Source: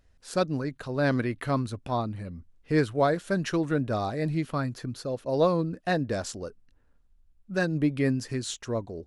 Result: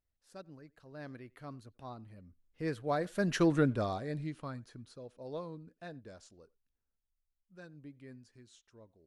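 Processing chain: Doppler pass-by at 3.5, 13 m/s, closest 2.8 m; speakerphone echo 90 ms, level -25 dB

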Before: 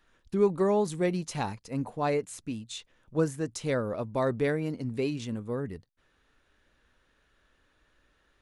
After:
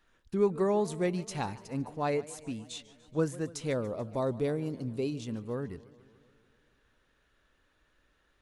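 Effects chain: 3.73–5.27 bell 1800 Hz -12 dB 0.81 oct; warbling echo 0.144 s, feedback 67%, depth 173 cents, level -19.5 dB; gain -2.5 dB

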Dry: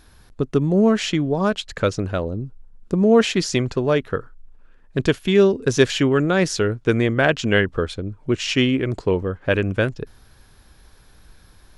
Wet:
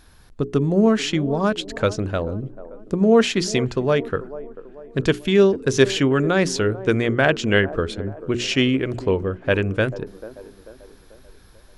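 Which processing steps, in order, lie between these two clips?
notches 60/120/180/240/300/360/420 Hz; band-limited delay 0.44 s, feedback 46%, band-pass 500 Hz, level -14 dB

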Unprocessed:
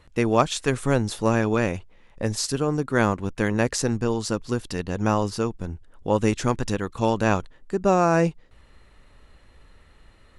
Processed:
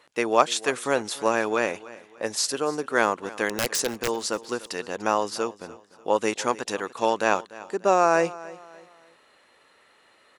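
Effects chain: HPF 450 Hz 12 dB/oct; 3.49–4.08 wrapped overs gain 17.5 dB; on a send: feedback echo 0.294 s, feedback 37%, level -19 dB; on the sum: gain +2 dB

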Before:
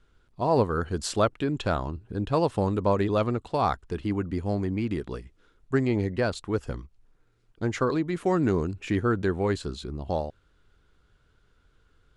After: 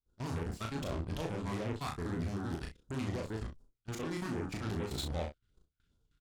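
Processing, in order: gate with hold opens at -52 dBFS; phaser stages 2, 1.3 Hz, lowest notch 500–2100 Hz; in parallel at +2 dB: compressor 10:1, threshold -39 dBFS, peak gain reduction 19 dB; on the sum: limiter -23.5 dBFS, peak gain reduction 10.5 dB; added harmonics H 4 -19 dB, 6 -11 dB, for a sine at -23.5 dBFS; granular stretch 0.51×, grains 0.115 s; level quantiser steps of 18 dB; early reflections 24 ms -10.5 dB, 36 ms -3.5 dB, 64 ms -11 dB; gain -2 dB

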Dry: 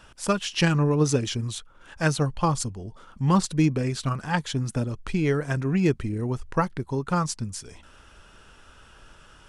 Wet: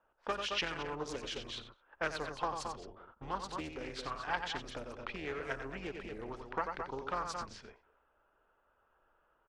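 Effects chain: octaver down 2 oct, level 0 dB; bell 130 Hz -3 dB 0.77 oct; loudspeakers at several distances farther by 31 m -8 dB, 75 m -10 dB; low-pass opened by the level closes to 820 Hz, open at -20 dBFS; compressor 6:1, threshold -25 dBFS, peak gain reduction 11.5 dB; three-band isolator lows -19 dB, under 430 Hz, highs -17 dB, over 5000 Hz; gate -51 dBFS, range -11 dB; Doppler distortion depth 0.32 ms; gain -2.5 dB

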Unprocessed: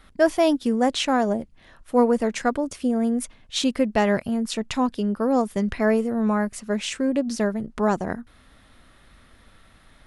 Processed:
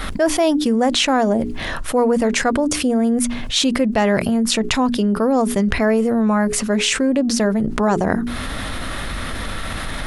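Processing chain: notches 60/120/180/240/300/360/420 Hz; fast leveller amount 70%

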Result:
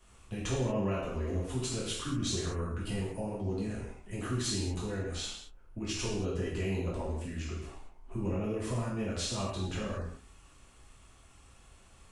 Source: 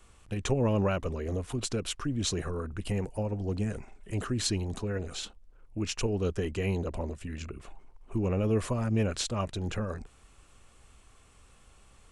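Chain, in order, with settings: compressor 2:1, threshold -32 dBFS, peak gain reduction 6 dB; non-linear reverb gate 0.26 s falling, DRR -7 dB; gain -7 dB

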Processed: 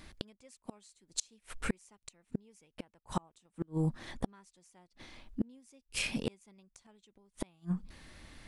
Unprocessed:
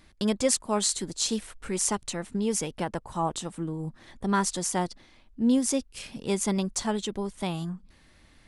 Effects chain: dynamic EQ 2400 Hz, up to +7 dB, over -55 dBFS, Q 3.1; flipped gate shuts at -23 dBFS, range -38 dB; gain +4 dB

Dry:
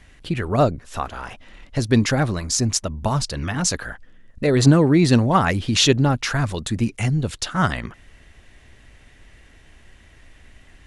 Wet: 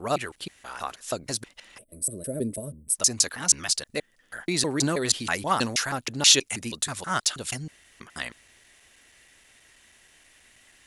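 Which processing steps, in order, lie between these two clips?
slices in reverse order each 0.16 s, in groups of 4; spectral gain 1.78–2.95, 660–7800 Hz -27 dB; RIAA curve recording; gain -6 dB

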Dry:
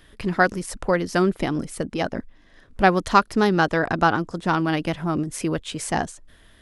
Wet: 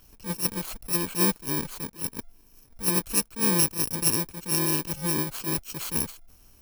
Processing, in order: FFT order left unsorted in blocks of 64 samples; maximiser +6 dB; attack slew limiter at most 240 dB/s; gain -8.5 dB

